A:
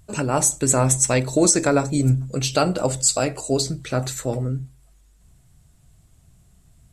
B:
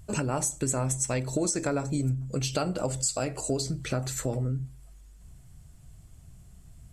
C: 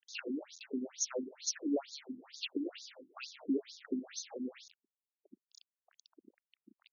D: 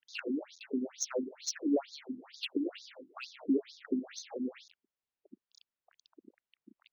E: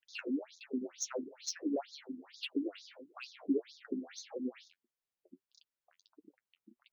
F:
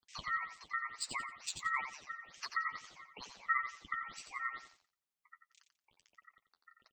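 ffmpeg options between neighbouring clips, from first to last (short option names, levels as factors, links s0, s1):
-af "lowshelf=f=150:g=5,bandreject=f=3800:w=15,acompressor=threshold=0.0447:ratio=4"
-af "acrusher=bits=6:mix=0:aa=0.000001,equalizer=f=1000:t=o:w=1.6:g=-12,afftfilt=real='re*between(b*sr/1024,250*pow(5000/250,0.5+0.5*sin(2*PI*2.2*pts/sr))/1.41,250*pow(5000/250,0.5+0.5*sin(2*PI*2.2*pts/sr))*1.41)':imag='im*between(b*sr/1024,250*pow(5000/250,0.5+0.5*sin(2*PI*2.2*pts/sr))/1.41,250*pow(5000/250,0.5+0.5*sin(2*PI*2.2*pts/sr))*1.41)':win_size=1024:overlap=0.75,volume=1.33"
-af "adynamicsmooth=sensitivity=2.5:basefreq=4400,volume=1.58"
-af "flanger=delay=5.7:depth=6.3:regen=33:speed=1.6:shape=triangular,volume=1.12"
-filter_complex "[0:a]aeval=exprs='val(0)*sin(2*PI*1600*n/s)':c=same,asplit=2[s0][s1];[s1]aecho=0:1:88|176|264:0.398|0.0995|0.0249[s2];[s0][s2]amix=inputs=2:normalize=0,volume=1.12"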